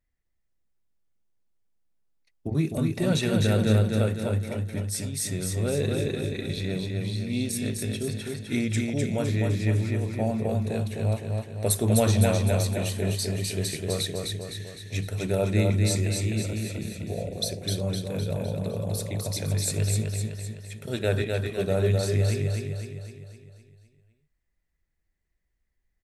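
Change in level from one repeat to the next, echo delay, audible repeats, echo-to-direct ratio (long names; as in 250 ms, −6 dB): −5.5 dB, 255 ms, 6, −2.0 dB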